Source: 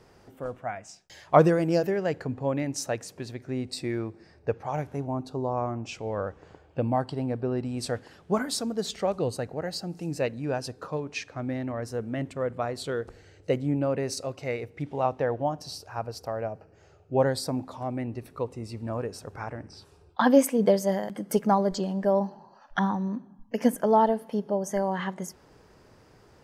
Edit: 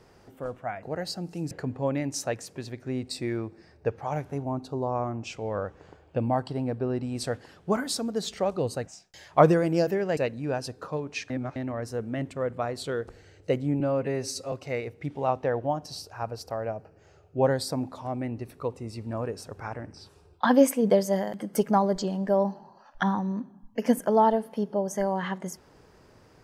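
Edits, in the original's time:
0.83–2.13 s: swap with 9.49–10.17 s
11.30–11.56 s: reverse
13.80–14.28 s: stretch 1.5×

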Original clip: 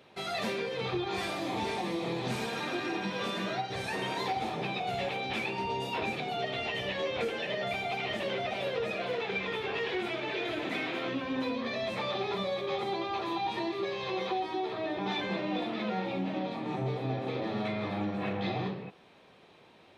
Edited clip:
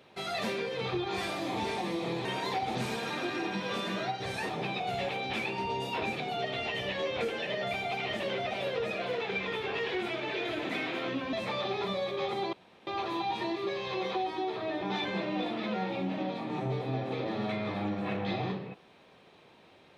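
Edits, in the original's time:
3.99–4.49 s: move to 2.25 s
11.33–11.83 s: delete
13.03 s: insert room tone 0.34 s

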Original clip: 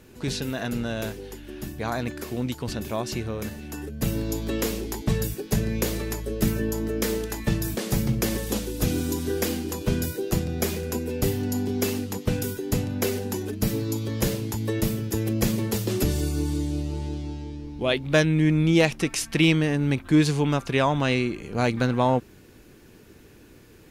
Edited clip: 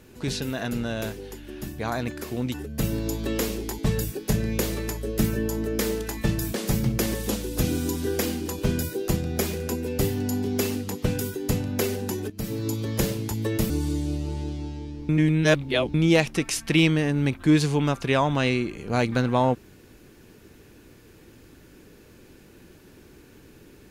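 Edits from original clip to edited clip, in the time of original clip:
2.54–3.77 s: delete
13.53–13.90 s: fade in, from -15 dB
14.93–16.35 s: delete
17.74–18.59 s: reverse

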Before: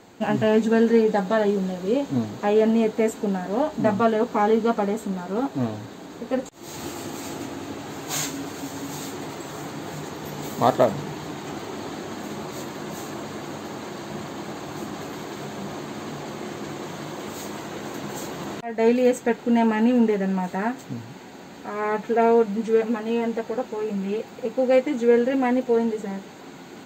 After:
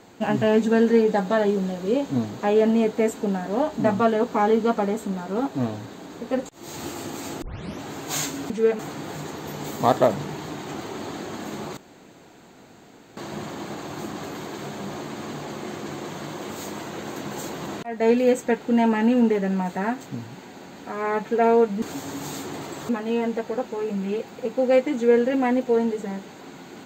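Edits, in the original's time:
7.42 s: tape start 0.39 s
8.50–9.57 s: swap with 22.60–22.89 s
12.55–13.95 s: room tone

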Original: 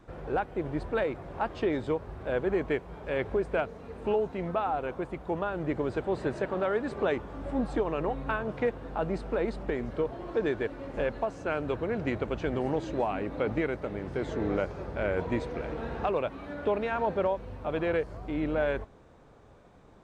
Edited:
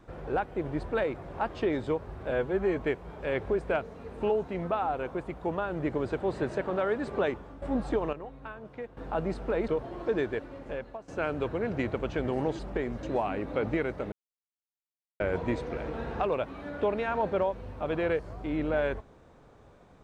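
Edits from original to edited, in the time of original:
2.31–2.63 s: stretch 1.5×
7.07–7.46 s: fade out, to -10.5 dB
7.97–8.81 s: gain -11.5 dB
9.52–9.96 s: move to 12.87 s
10.46–11.36 s: fade out, to -15 dB
13.96–15.04 s: mute

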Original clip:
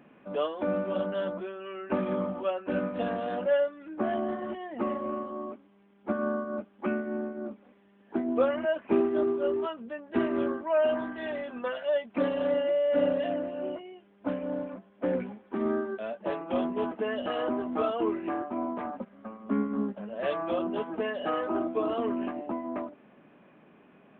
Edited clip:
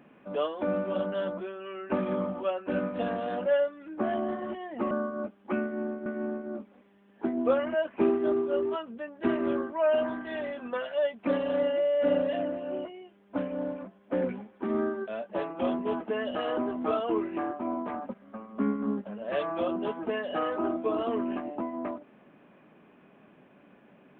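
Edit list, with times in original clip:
4.91–6.25 s: delete
6.97–7.40 s: loop, 2 plays

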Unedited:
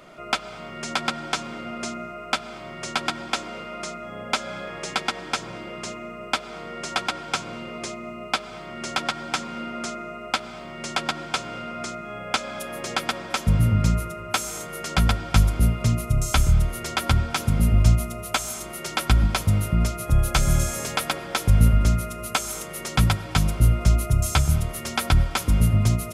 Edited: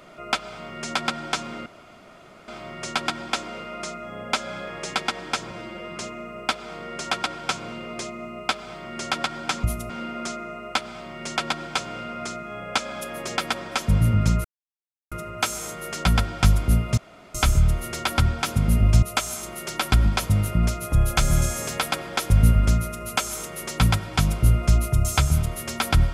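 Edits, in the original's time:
1.66–2.48 s: room tone
5.51–5.82 s: stretch 1.5×
14.03 s: insert silence 0.67 s
15.89–16.26 s: room tone
17.94–18.20 s: move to 9.48 s

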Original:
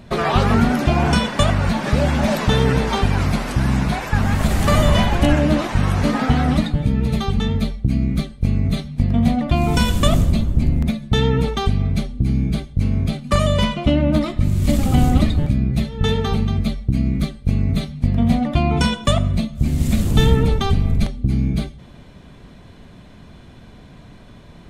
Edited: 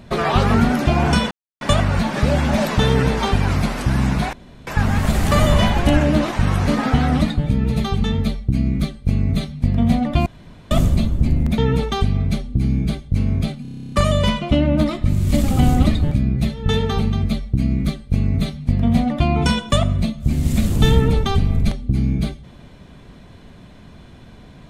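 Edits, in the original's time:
1.31 s: insert silence 0.30 s
4.03 s: insert room tone 0.34 s
9.62–10.07 s: room tone
10.94–11.23 s: delete
13.27 s: stutter 0.03 s, 11 plays

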